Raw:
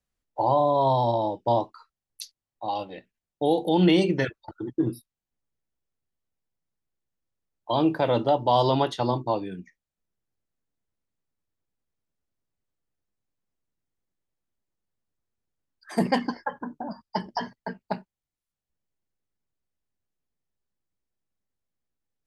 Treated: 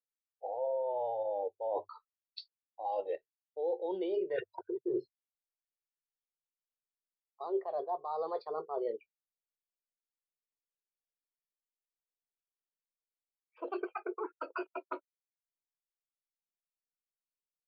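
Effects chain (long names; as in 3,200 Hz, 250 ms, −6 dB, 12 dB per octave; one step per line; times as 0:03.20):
gliding playback speed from 88% → 164%
parametric band 720 Hz +2.5 dB 1.9 octaves
mains-hum notches 50/100 Hz
in parallel at −1 dB: brickwall limiter −19 dBFS, peak gain reduction 11 dB
on the sum: low shelf with overshoot 320 Hz −10.5 dB, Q 3
reversed playback
downward compressor 16 to 1, threshold −29 dBFS, peak gain reduction 21 dB
reversed playback
downsampling to 11,025 Hz
every bin expanded away from the loudest bin 1.5 to 1
level −5 dB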